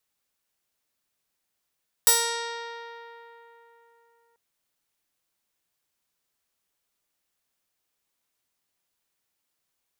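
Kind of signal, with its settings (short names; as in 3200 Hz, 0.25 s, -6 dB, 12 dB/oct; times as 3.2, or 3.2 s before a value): plucked string A#4, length 2.29 s, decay 3.62 s, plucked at 0.21, bright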